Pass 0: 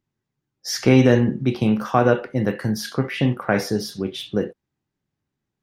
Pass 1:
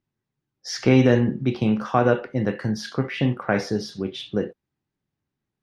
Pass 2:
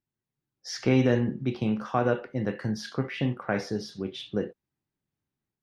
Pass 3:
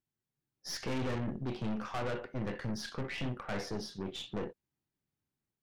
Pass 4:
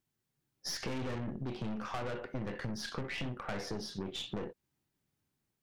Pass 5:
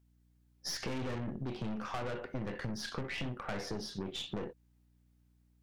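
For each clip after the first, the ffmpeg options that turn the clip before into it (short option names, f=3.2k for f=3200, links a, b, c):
-af "lowpass=5.8k,volume=-2dB"
-af "dynaudnorm=f=220:g=3:m=4dB,volume=-8.5dB"
-af "aeval=exprs='(tanh(44.7*val(0)+0.6)-tanh(0.6))/44.7':c=same"
-af "acompressor=threshold=-41dB:ratio=6,volume=6dB"
-af "aeval=exprs='val(0)+0.000447*(sin(2*PI*60*n/s)+sin(2*PI*2*60*n/s)/2+sin(2*PI*3*60*n/s)/3+sin(2*PI*4*60*n/s)/4+sin(2*PI*5*60*n/s)/5)':c=same"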